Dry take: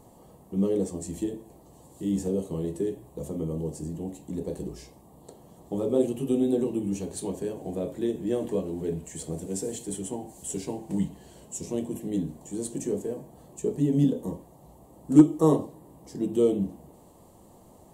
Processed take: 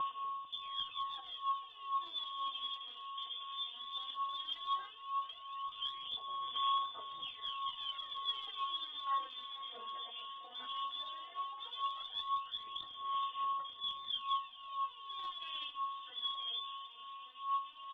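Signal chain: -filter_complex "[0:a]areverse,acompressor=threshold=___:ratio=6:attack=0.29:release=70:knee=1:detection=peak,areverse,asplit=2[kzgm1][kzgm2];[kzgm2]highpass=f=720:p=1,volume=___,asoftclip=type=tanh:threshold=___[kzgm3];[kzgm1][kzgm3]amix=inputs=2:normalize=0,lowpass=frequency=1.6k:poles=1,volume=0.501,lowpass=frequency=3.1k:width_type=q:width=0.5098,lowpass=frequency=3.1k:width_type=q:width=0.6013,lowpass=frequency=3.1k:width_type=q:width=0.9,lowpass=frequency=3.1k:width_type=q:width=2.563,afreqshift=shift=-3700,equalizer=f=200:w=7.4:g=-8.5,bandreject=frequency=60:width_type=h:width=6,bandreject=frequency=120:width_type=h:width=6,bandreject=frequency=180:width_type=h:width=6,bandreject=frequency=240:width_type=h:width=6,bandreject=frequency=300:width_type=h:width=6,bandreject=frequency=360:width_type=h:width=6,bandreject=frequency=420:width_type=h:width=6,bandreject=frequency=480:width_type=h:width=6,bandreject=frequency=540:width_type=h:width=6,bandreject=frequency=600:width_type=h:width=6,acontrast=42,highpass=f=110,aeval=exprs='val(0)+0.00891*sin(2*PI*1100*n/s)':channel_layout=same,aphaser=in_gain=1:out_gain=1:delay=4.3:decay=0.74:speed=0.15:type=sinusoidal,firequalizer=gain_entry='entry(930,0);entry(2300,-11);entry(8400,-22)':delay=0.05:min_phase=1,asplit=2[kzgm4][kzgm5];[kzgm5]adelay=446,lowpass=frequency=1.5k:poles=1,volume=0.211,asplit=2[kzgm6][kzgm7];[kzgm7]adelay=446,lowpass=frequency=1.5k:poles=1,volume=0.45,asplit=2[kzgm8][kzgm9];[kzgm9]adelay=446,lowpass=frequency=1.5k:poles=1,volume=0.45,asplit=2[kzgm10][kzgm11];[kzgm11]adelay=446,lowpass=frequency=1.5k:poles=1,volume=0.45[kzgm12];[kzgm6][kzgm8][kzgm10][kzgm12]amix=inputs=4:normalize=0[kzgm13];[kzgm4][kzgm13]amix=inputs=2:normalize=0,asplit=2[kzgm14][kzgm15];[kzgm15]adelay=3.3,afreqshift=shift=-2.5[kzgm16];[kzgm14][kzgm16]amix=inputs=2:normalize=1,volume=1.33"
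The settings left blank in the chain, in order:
0.0178, 3.16, 0.0335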